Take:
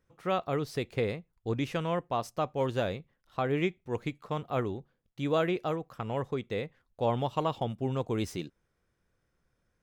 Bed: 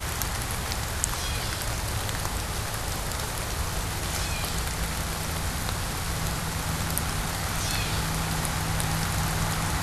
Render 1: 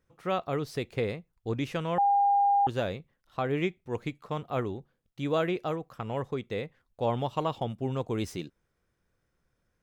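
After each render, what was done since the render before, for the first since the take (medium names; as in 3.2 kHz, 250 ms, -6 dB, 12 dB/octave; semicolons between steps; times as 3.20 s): 1.98–2.67 s: bleep 805 Hz -20 dBFS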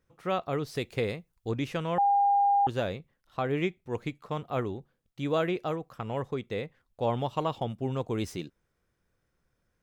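0.75–1.51 s: treble shelf 3.7 kHz +6.5 dB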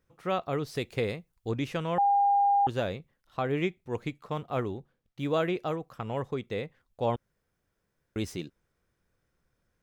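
4.33–5.32 s: median filter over 5 samples; 7.16–8.16 s: room tone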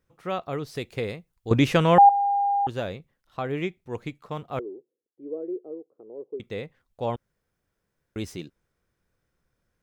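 1.51–2.09 s: gain +12 dB; 4.59–6.40 s: Butterworth band-pass 390 Hz, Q 2.4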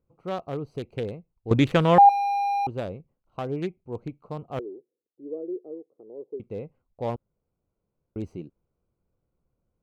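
local Wiener filter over 25 samples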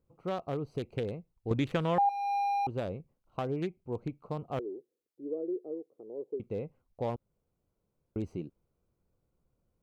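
compression 2.5:1, threshold -31 dBFS, peak gain reduction 13 dB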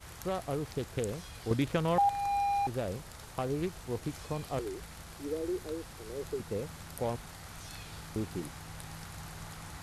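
add bed -18 dB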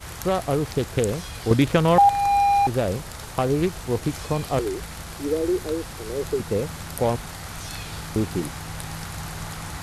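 trim +11.5 dB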